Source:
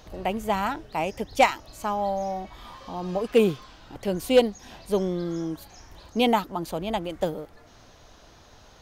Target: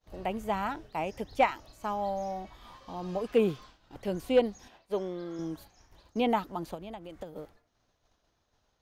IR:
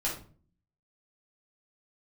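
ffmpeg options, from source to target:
-filter_complex "[0:a]asettb=1/sr,asplit=3[link_01][link_02][link_03];[link_01]atrim=end=4.684[link_04];[link_02]atrim=start=4.68:end=5.39,asetpts=PTS-STARTPTS,afade=type=in:duration=0.004:curve=qsin,afade=type=out:start_time=0.706:duration=0.004:curve=qsin,bass=frequency=250:gain=-11,treble=frequency=4000:gain=-8[link_05];[link_03]atrim=start=5.386[link_06];[link_04][link_05]acrossfade=duration=0.004:curve1=hsin:curve2=qsin[link_07];[link_07][link_06]acrossfade=duration=0.004:curve1=qsin:curve2=hsin,acrossover=split=2900[link_08][link_09];[link_09]acompressor=threshold=-44dB:ratio=4:attack=1:release=60[link_10];[link_08][link_10]amix=inputs=2:normalize=0,agate=range=-33dB:threshold=-40dB:ratio=3:detection=peak,asettb=1/sr,asplit=3[link_11][link_12][link_13];[link_11]atrim=end=6.744[link_14];[link_12]atrim=start=6.74:end=7.36,asetpts=PTS-STARTPTS,afade=type=in:duration=0.004:curve=qsin,afade=type=out:start_time=0.616:duration=0.004:curve=qsin,acompressor=threshold=-33dB:ratio=16[link_15];[link_13]atrim=start=7.356[link_16];[link_14][link_15]acrossfade=duration=0.004:curve1=hsin:curve2=qsin[link_17];[link_17][link_16]acrossfade=duration=0.004:curve1=qsin:curve2=hsin,volume=-5.5dB"

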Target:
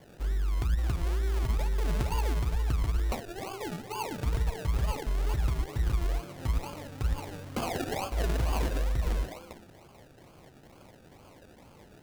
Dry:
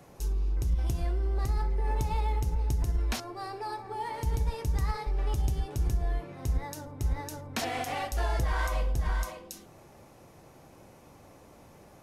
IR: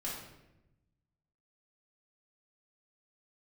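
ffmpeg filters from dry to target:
-af "acrusher=samples=33:mix=1:aa=0.000001:lfo=1:lforange=19.8:lforate=2.2"

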